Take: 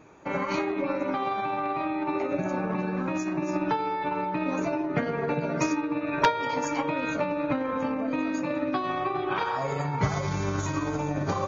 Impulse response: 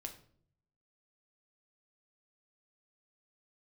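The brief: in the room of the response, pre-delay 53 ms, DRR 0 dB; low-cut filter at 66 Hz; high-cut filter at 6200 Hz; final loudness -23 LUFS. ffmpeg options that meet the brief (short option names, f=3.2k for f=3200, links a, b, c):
-filter_complex "[0:a]highpass=66,lowpass=6.2k,asplit=2[a][b];[1:a]atrim=start_sample=2205,adelay=53[c];[b][c]afir=irnorm=-1:irlink=0,volume=3.5dB[d];[a][d]amix=inputs=2:normalize=0,volume=3dB"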